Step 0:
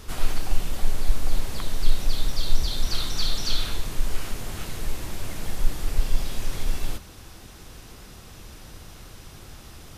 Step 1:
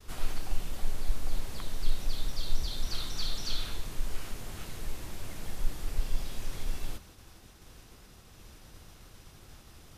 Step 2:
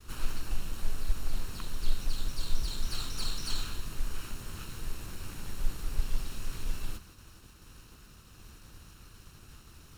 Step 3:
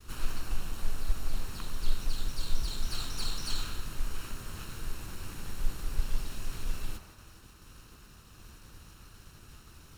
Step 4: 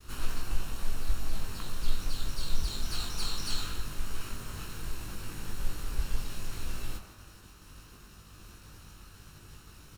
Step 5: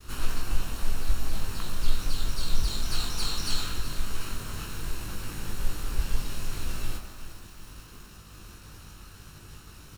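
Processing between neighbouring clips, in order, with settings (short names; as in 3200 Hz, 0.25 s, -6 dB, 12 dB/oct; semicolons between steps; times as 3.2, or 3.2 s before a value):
expander -41 dBFS; gain -8 dB
minimum comb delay 0.73 ms; gain +1 dB
band-limited delay 97 ms, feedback 67%, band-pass 970 Hz, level -7 dB
doubler 20 ms -4 dB
lo-fi delay 0.371 s, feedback 55%, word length 8-bit, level -13.5 dB; gain +4 dB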